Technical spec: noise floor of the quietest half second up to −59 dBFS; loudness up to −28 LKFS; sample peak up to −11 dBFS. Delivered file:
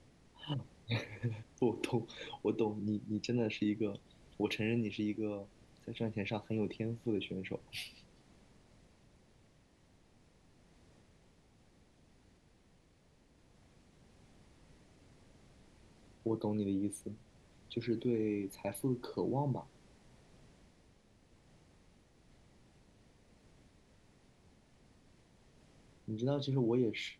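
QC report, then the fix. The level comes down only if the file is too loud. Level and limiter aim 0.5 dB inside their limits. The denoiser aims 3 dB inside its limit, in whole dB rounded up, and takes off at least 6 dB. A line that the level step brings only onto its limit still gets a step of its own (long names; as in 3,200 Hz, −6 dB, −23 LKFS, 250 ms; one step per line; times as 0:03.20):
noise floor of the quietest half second −67 dBFS: in spec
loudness −37.5 LKFS: in spec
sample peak −20.5 dBFS: in spec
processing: no processing needed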